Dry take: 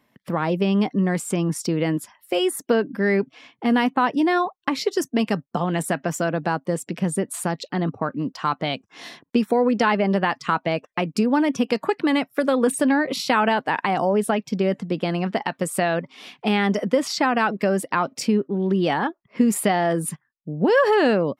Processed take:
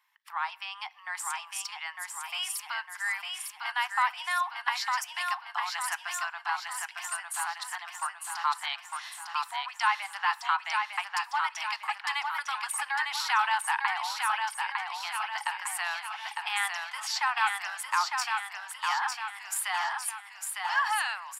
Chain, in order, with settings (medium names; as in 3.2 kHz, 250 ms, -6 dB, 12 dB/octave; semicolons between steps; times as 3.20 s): steep high-pass 840 Hz 72 dB/octave; feedback delay 904 ms, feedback 52%, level -4 dB; on a send at -19 dB: reverberation RT60 1.5 s, pre-delay 6 ms; on the sum: trim -4 dB